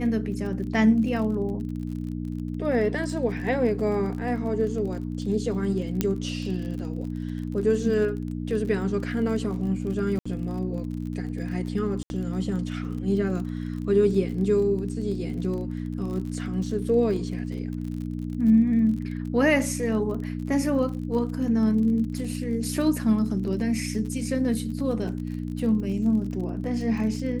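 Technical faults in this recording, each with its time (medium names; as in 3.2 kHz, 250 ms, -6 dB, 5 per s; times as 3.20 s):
crackle 32 per s -34 dBFS
hum 60 Hz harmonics 5 -31 dBFS
6.01 s: pop -9 dBFS
10.19–10.26 s: dropout 65 ms
12.03–12.10 s: dropout 71 ms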